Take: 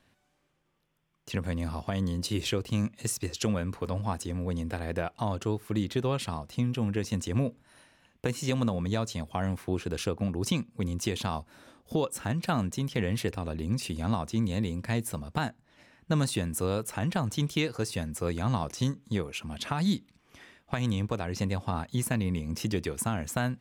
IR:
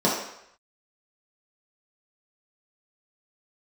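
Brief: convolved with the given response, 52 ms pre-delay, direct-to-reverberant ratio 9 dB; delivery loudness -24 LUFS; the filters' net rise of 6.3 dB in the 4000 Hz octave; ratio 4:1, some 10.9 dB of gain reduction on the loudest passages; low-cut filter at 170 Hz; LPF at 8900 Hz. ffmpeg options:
-filter_complex "[0:a]highpass=170,lowpass=8.9k,equalizer=f=4k:t=o:g=8,acompressor=threshold=-37dB:ratio=4,asplit=2[a][b];[1:a]atrim=start_sample=2205,adelay=52[c];[b][c]afir=irnorm=-1:irlink=0,volume=-25.5dB[d];[a][d]amix=inputs=2:normalize=0,volume=15dB"

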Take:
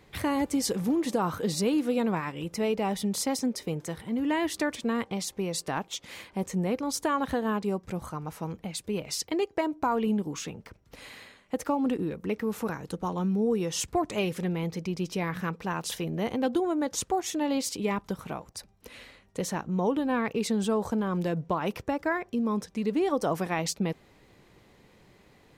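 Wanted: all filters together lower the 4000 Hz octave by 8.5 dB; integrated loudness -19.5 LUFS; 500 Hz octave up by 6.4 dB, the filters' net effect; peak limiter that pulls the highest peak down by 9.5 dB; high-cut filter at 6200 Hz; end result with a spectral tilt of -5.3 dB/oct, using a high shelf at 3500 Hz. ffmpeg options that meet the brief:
-af "lowpass=6.2k,equalizer=f=500:t=o:g=8,highshelf=f=3.5k:g=-5.5,equalizer=f=4k:t=o:g=-6.5,volume=10dB,alimiter=limit=-9.5dB:level=0:latency=1"

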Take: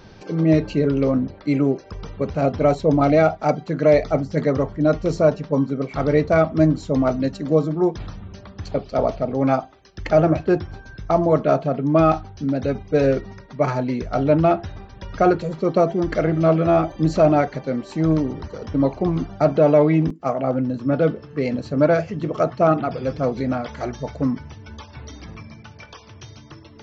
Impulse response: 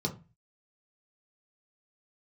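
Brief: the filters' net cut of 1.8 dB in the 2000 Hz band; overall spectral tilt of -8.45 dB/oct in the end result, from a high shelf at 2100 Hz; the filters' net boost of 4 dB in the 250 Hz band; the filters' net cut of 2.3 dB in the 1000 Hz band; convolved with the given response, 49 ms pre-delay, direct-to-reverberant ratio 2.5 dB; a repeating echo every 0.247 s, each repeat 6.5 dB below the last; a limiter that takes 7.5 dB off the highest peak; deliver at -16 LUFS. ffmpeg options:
-filter_complex "[0:a]equalizer=f=250:t=o:g=5.5,equalizer=f=1k:t=o:g=-5,equalizer=f=2k:t=o:g=-5.5,highshelf=f=2.1k:g=8.5,alimiter=limit=-10.5dB:level=0:latency=1,aecho=1:1:247|494|741|988|1235|1482:0.473|0.222|0.105|0.0491|0.0231|0.0109,asplit=2[a][b];[1:a]atrim=start_sample=2205,adelay=49[c];[b][c]afir=irnorm=-1:irlink=0,volume=-7dB[d];[a][d]amix=inputs=2:normalize=0,volume=-4dB"

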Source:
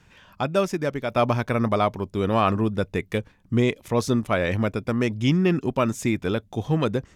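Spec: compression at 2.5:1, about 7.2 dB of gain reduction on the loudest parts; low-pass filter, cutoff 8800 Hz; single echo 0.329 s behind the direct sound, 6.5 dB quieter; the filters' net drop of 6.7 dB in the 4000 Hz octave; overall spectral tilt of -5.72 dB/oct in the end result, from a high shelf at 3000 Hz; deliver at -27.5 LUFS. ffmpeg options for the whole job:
-af "lowpass=8.8k,highshelf=f=3k:g=-3.5,equalizer=f=4k:t=o:g=-6.5,acompressor=threshold=-27dB:ratio=2.5,aecho=1:1:329:0.473,volume=2dB"

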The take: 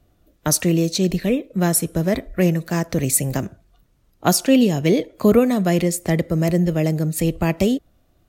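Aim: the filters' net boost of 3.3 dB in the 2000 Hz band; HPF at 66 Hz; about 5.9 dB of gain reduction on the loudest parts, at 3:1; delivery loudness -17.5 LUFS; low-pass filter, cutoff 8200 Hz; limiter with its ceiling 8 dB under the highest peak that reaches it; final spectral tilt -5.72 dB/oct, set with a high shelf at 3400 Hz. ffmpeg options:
-af "highpass=66,lowpass=8.2k,equalizer=f=2k:t=o:g=5.5,highshelf=f=3.4k:g=-5,acompressor=threshold=-17dB:ratio=3,volume=7dB,alimiter=limit=-6.5dB:level=0:latency=1"

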